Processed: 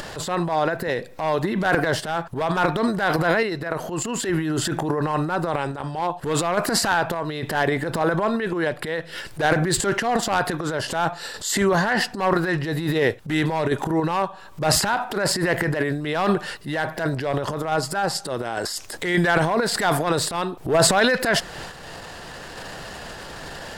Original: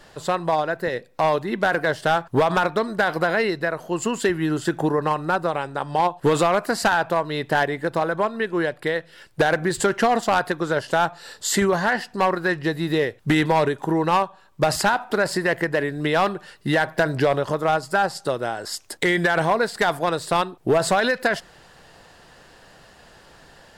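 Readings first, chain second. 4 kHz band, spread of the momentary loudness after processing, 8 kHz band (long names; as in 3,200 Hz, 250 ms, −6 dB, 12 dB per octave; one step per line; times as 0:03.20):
+3.0 dB, 10 LU, +5.0 dB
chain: transient designer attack −10 dB, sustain +10 dB
sample-and-hold tremolo
upward compression, threshold −25 dBFS
level +2 dB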